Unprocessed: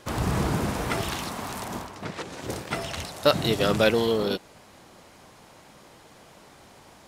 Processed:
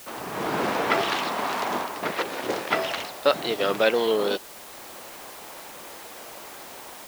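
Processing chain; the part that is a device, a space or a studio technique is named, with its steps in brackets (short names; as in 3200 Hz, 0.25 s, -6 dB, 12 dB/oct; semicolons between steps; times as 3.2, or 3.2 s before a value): dictaphone (BPF 360–3800 Hz; AGC gain up to 14 dB; wow and flutter; white noise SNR 17 dB); gain -4.5 dB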